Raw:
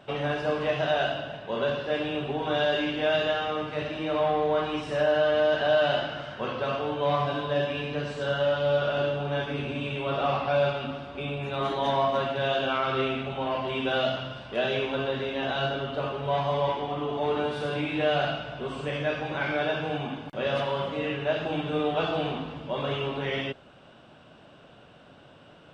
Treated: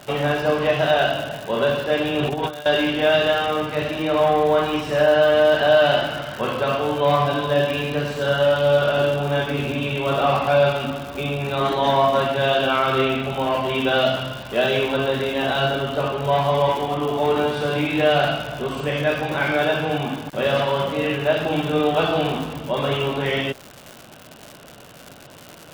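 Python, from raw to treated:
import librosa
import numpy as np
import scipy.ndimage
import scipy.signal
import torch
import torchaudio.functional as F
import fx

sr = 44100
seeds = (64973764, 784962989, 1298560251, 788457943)

y = fx.over_compress(x, sr, threshold_db=-32.0, ratio=-0.5, at=(2.19, 2.66))
y = fx.dmg_crackle(y, sr, seeds[0], per_s=200.0, level_db=-35.0)
y = F.gain(torch.from_numpy(y), 7.5).numpy()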